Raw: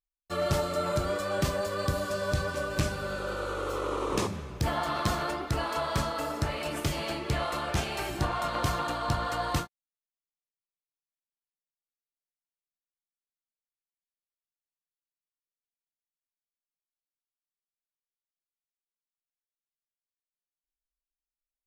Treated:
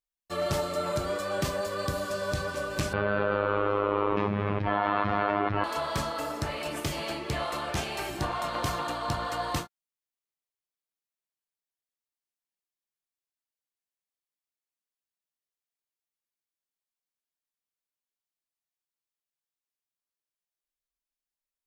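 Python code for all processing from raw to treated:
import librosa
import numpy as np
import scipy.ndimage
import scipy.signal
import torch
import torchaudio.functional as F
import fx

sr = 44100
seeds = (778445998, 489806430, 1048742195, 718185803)

y = fx.chain(x, sr, fx.lowpass(hz=2600.0, slope=24),
    fx.robotise(hz=102.0),
    fx.env_flatten(amount_pct=100), at=(2.93, 5.64))
y = fx.low_shelf(y, sr, hz=120.0, db=-6.5)
y = fx.notch(y, sr, hz=1400.0, q=27.0)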